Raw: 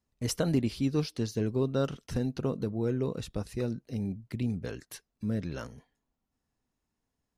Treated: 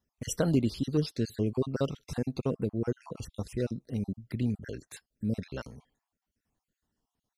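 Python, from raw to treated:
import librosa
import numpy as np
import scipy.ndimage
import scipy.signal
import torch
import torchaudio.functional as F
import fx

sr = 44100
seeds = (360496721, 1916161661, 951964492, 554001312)

y = fx.spec_dropout(x, sr, seeds[0], share_pct=44)
y = y * librosa.db_to_amplitude(1.5)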